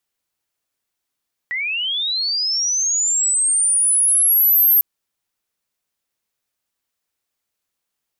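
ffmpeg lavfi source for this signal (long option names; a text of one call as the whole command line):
ffmpeg -f lavfi -i "aevalsrc='pow(10,(-20.5+10.5*t/3.3)/20)*sin(2*PI*(1900*t+11100*t*t/(2*3.3)))':duration=3.3:sample_rate=44100" out.wav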